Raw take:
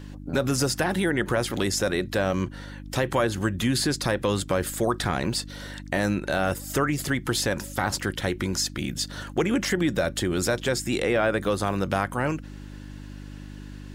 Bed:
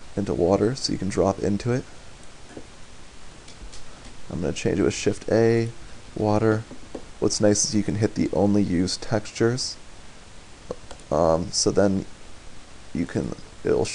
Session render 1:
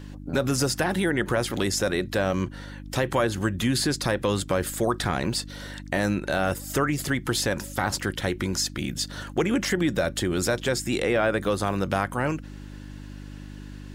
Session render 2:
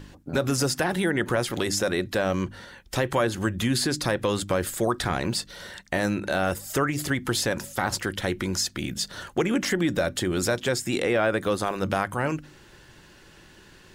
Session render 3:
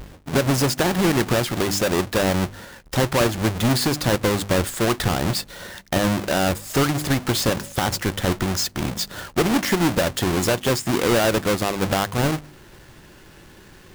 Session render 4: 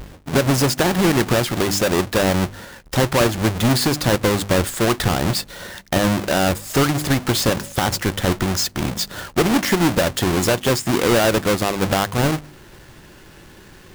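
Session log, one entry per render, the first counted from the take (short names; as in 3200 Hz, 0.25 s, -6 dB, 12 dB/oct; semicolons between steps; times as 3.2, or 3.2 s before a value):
nothing audible
de-hum 50 Hz, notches 6
half-waves squared off
gain +2.5 dB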